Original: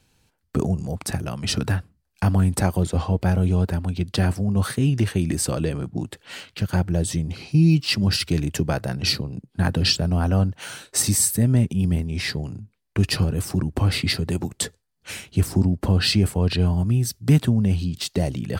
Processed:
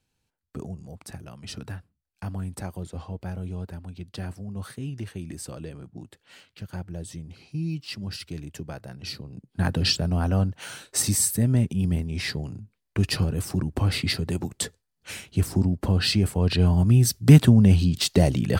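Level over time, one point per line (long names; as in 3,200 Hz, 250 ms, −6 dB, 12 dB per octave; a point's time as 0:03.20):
0:09.10 −13.5 dB
0:09.61 −3 dB
0:16.27 −3 dB
0:17.06 +4 dB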